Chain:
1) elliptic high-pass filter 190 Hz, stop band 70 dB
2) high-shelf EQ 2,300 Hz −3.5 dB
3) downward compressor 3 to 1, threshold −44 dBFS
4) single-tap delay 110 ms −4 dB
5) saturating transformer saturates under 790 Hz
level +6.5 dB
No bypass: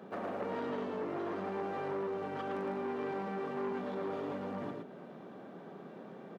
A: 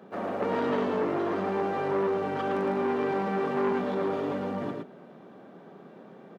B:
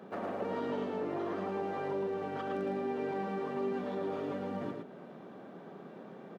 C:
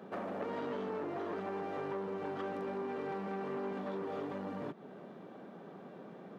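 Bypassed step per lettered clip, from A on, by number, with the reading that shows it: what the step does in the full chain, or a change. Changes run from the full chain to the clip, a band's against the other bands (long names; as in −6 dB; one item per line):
3, average gain reduction 6.5 dB
5, change in crest factor −1.5 dB
4, change in integrated loudness −1.5 LU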